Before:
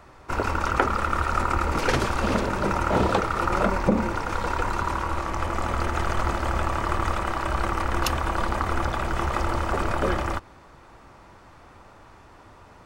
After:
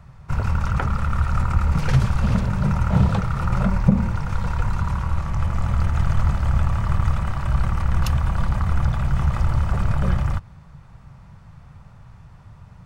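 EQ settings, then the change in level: resonant low shelf 220 Hz +12.5 dB, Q 3; -5.0 dB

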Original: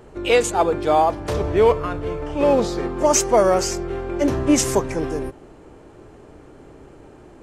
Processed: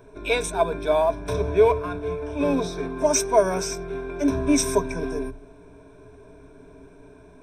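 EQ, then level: rippled EQ curve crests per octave 1.6, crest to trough 17 dB; -7.0 dB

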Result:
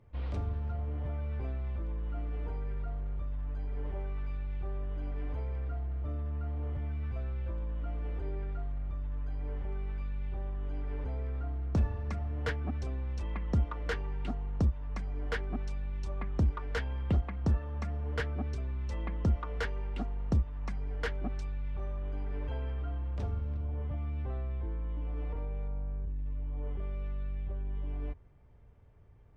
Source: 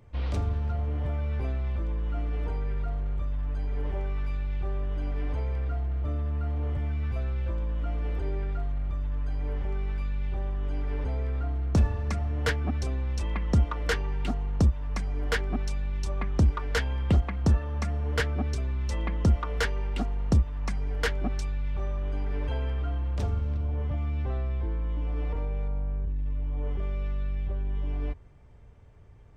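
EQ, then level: low-pass 2.6 kHz 6 dB/octave; -6.0 dB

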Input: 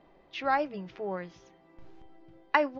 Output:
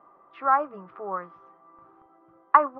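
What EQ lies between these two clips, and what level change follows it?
high-pass 290 Hz 6 dB/octave; resonant low-pass 1.2 kHz, resonance Q 12; -1.0 dB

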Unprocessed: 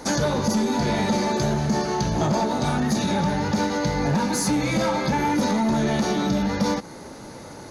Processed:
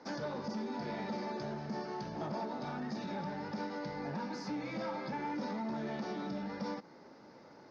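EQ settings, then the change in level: four-pole ladder low-pass 5.5 kHz, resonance 80%; three-band isolator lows -17 dB, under 150 Hz, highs -21 dB, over 2.7 kHz; -3.0 dB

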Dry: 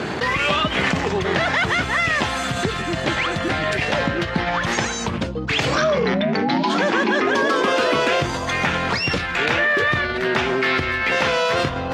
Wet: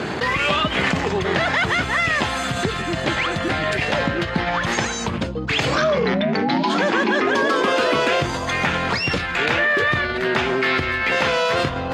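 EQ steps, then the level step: band-stop 5.7 kHz, Q 18; 0.0 dB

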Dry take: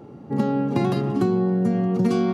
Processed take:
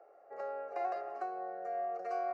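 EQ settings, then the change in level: ladder high-pass 640 Hz, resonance 70%; distance through air 140 m; static phaser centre 920 Hz, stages 6; +1.0 dB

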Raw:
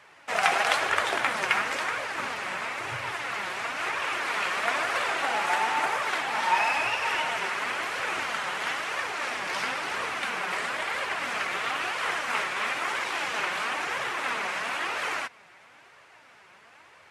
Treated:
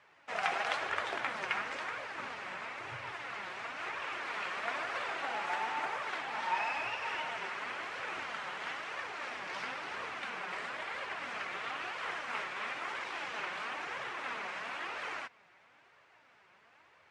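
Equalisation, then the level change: distance through air 80 m; -9.0 dB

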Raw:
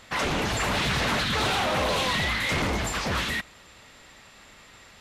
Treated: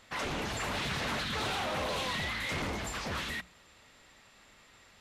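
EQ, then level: hum notches 60/120/180 Hz; -8.5 dB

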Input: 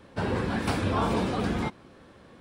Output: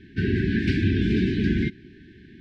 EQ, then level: brick-wall FIR band-stop 420–1500 Hz; distance through air 220 m; +7.0 dB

